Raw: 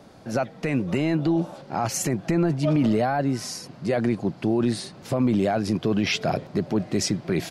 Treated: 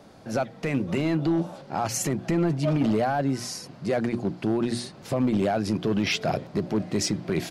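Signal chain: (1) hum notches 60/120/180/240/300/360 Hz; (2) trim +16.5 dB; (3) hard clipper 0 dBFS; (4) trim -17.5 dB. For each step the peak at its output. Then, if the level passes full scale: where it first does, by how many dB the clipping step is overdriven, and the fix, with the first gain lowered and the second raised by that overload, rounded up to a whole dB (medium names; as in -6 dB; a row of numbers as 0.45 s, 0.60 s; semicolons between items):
-11.5 dBFS, +5.0 dBFS, 0.0 dBFS, -17.5 dBFS; step 2, 5.0 dB; step 2 +11.5 dB, step 4 -12.5 dB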